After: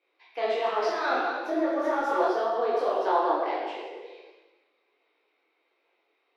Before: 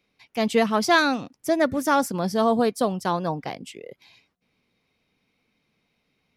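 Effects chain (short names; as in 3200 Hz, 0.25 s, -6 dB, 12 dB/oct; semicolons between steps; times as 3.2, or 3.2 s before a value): reverse delay 0.145 s, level -12 dB; elliptic high-pass 340 Hz, stop band 50 dB; negative-ratio compressor -25 dBFS, ratio -1; air absorption 300 m; plate-style reverb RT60 1.2 s, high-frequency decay 0.95×, pre-delay 0 ms, DRR -4.5 dB; detuned doubles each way 47 cents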